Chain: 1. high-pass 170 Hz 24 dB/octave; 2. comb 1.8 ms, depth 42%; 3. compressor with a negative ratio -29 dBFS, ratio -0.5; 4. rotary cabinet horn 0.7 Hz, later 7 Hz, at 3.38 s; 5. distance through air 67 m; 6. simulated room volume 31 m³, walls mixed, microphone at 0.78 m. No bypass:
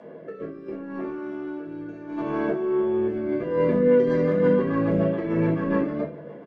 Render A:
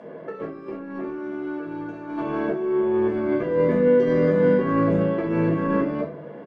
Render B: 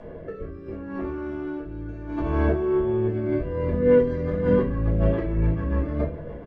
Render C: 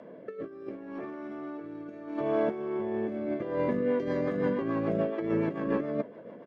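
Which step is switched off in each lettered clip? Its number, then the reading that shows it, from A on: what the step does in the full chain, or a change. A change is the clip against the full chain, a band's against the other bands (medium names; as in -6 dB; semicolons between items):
4, 1 kHz band +2.0 dB; 1, 125 Hz band +6.5 dB; 6, echo-to-direct 3.5 dB to none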